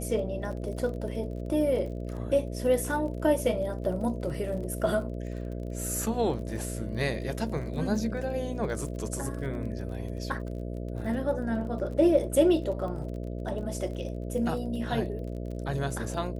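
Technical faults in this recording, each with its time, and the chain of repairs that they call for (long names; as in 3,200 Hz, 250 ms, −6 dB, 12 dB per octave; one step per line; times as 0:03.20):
mains buzz 60 Hz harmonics 11 −35 dBFS
surface crackle 31 per second −38 dBFS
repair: click removal
hum removal 60 Hz, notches 11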